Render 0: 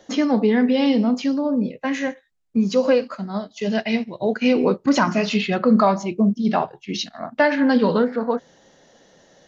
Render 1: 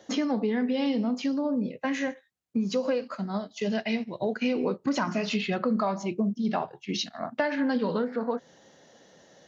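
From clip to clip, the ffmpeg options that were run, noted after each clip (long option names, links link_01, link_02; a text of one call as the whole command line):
ffmpeg -i in.wav -af "highpass=71,acompressor=threshold=-23dB:ratio=3,volume=-2.5dB" out.wav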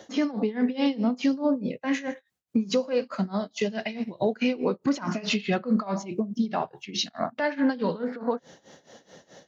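ffmpeg -i in.wav -af "alimiter=limit=-21.5dB:level=0:latency=1:release=138,tremolo=f=4.7:d=0.88,volume=7.5dB" out.wav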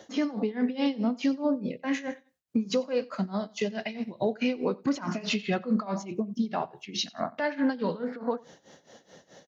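ffmpeg -i in.wav -af "aecho=1:1:91|182:0.0631|0.0183,volume=-2.5dB" out.wav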